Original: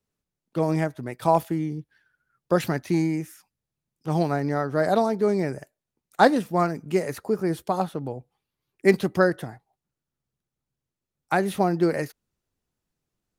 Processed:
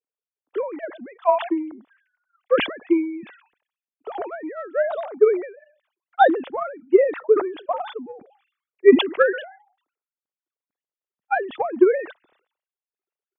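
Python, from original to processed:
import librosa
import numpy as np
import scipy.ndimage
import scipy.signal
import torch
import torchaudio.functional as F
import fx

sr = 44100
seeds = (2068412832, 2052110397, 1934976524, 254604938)

y = fx.sine_speech(x, sr)
y = fx.transient(y, sr, attack_db=12, sustain_db=-2)
y = fx.high_shelf(y, sr, hz=2600.0, db=-11.5, at=(6.29, 9.0))
y = fx.sustainer(y, sr, db_per_s=110.0)
y = y * 10.0 ** (-7.0 / 20.0)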